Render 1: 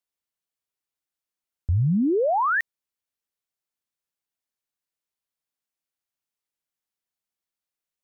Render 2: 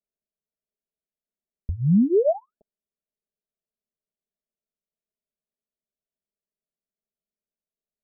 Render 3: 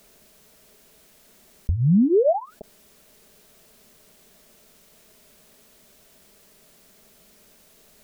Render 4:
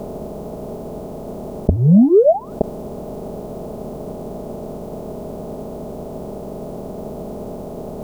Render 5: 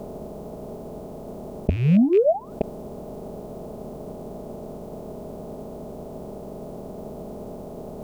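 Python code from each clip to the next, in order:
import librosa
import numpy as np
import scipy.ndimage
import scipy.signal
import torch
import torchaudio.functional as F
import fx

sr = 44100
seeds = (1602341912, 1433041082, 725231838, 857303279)

y1 = scipy.signal.sosfilt(scipy.signal.butter(12, 690.0, 'lowpass', fs=sr, output='sos'), x)
y1 = y1 + 0.9 * np.pad(y1, (int(4.8 * sr / 1000.0), 0))[:len(y1)]
y2 = fx.env_flatten(y1, sr, amount_pct=50)
y3 = fx.bin_compress(y2, sr, power=0.4)
y3 = fx.upward_expand(y3, sr, threshold_db=-29.0, expansion=1.5)
y3 = F.gain(torch.from_numpy(y3), 6.0).numpy()
y4 = fx.rattle_buzz(y3, sr, strikes_db=-22.0, level_db=-22.0)
y4 = F.gain(torch.from_numpy(y4), -6.5).numpy()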